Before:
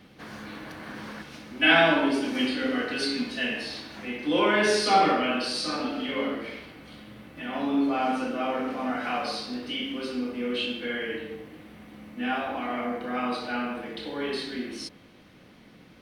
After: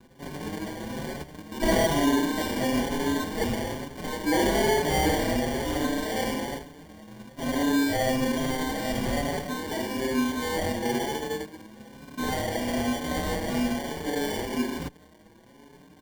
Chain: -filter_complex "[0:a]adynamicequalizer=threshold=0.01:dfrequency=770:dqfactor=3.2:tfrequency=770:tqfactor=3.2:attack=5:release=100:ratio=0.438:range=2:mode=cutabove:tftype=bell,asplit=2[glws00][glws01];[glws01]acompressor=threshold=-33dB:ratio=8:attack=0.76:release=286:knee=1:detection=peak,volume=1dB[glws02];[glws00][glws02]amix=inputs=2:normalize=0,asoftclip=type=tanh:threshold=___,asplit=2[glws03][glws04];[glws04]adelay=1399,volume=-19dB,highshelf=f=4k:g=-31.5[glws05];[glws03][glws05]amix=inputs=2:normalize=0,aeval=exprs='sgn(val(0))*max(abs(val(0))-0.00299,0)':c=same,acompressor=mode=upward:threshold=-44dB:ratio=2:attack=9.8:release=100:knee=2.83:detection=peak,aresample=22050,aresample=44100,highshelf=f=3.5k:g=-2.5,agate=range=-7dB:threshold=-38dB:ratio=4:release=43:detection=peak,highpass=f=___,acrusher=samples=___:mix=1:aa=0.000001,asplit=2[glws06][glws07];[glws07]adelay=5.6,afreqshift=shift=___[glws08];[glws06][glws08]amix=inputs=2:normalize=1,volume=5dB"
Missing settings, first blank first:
-20dB, 62, 34, 1.1